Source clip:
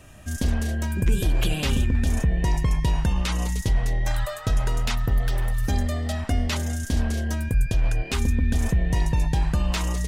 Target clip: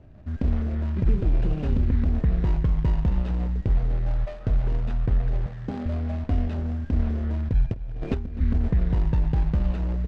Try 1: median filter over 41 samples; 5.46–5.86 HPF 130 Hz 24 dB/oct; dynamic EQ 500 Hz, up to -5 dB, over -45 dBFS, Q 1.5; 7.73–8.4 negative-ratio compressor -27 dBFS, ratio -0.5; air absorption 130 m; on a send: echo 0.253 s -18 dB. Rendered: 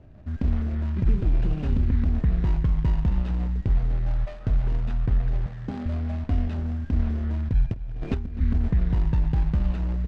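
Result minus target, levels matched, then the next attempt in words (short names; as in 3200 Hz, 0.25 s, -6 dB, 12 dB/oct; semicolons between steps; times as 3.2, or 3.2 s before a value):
500 Hz band -3.5 dB
median filter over 41 samples; 5.46–5.86 HPF 130 Hz 24 dB/oct; 7.73–8.4 negative-ratio compressor -27 dBFS, ratio -0.5; air absorption 130 m; on a send: echo 0.253 s -18 dB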